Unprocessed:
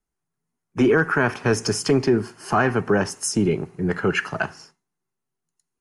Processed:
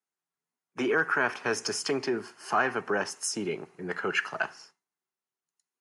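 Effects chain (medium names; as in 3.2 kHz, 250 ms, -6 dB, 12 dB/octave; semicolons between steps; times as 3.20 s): frequency weighting A; trim -5 dB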